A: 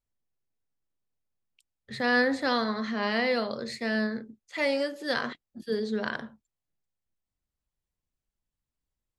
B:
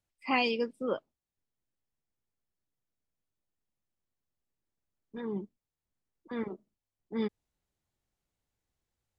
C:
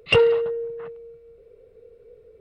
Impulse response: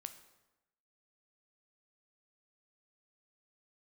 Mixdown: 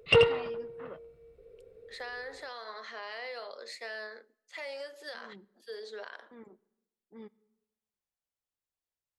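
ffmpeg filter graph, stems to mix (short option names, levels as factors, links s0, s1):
-filter_complex "[0:a]highpass=f=430:w=0.5412,highpass=f=430:w=1.3066,acompressor=threshold=0.0355:ratio=6,volume=0.501,asplit=2[s0][s1];[s1]volume=0.188[s2];[1:a]highshelf=f=2400:g=-11.5,volume=0.178,asplit=2[s3][s4];[s4]volume=0.473[s5];[2:a]volume=0.596,asplit=2[s6][s7];[s7]volume=0.531[s8];[s0][s3]amix=inputs=2:normalize=0,lowshelf=f=200:g=-10.5,alimiter=level_in=2.82:limit=0.0631:level=0:latency=1:release=146,volume=0.355,volume=1[s9];[3:a]atrim=start_sample=2205[s10];[s2][s5]amix=inputs=2:normalize=0[s11];[s11][s10]afir=irnorm=-1:irlink=0[s12];[s8]aecho=0:1:83:1[s13];[s6][s9][s12][s13]amix=inputs=4:normalize=0"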